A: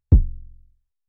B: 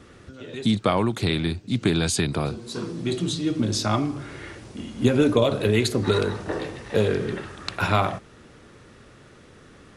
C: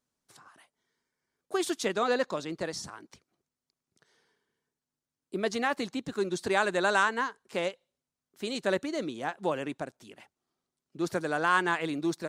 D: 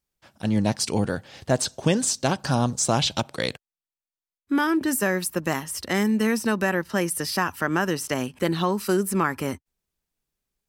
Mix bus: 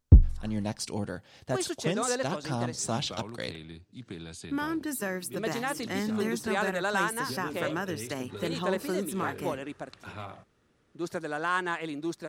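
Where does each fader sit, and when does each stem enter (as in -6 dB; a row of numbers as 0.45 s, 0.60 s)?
-1.5 dB, -20.0 dB, -3.5 dB, -9.5 dB; 0.00 s, 2.25 s, 0.00 s, 0.00 s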